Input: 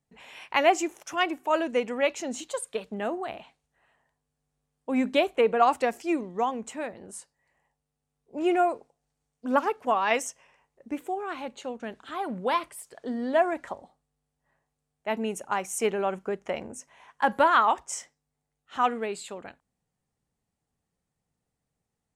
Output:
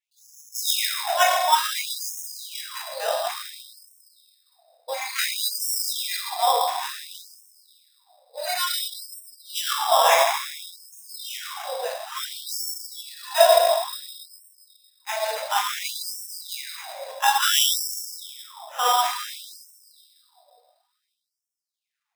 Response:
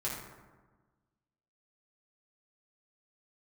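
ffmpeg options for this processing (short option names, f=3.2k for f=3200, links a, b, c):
-filter_complex "[1:a]atrim=start_sample=2205,asetrate=22932,aresample=44100[a];[0:a][a]afir=irnorm=-1:irlink=0,acrusher=samples=10:mix=1:aa=0.000001,afftfilt=real='re*gte(b*sr/1024,470*pow(5300/470,0.5+0.5*sin(2*PI*0.57*pts/sr)))':imag='im*gte(b*sr/1024,470*pow(5300/470,0.5+0.5*sin(2*PI*0.57*pts/sr)))':win_size=1024:overlap=0.75"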